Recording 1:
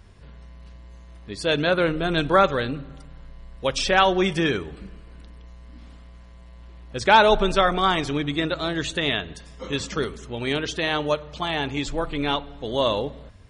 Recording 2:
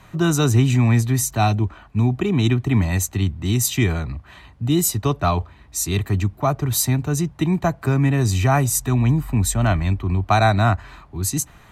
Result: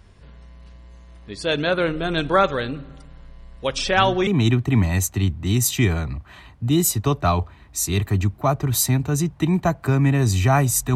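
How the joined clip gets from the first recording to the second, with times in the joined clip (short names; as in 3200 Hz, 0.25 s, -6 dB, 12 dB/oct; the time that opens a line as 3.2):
recording 1
3.76 add recording 2 from 1.75 s 0.51 s -10.5 dB
4.27 switch to recording 2 from 2.26 s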